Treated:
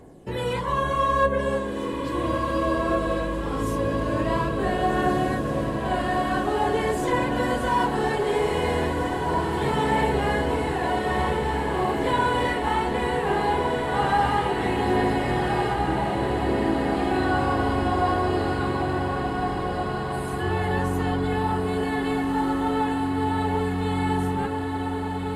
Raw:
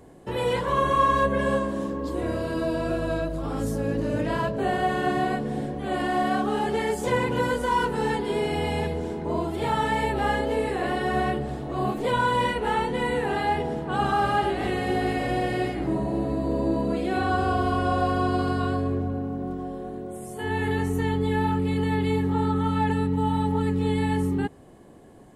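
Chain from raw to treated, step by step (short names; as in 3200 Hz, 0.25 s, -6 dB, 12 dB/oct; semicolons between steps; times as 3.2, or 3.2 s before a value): phaser 0.2 Hz, delay 3.6 ms, feedback 35%; on a send: diffused feedback echo 1.588 s, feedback 68%, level -4 dB; on the sum: gain -1 dB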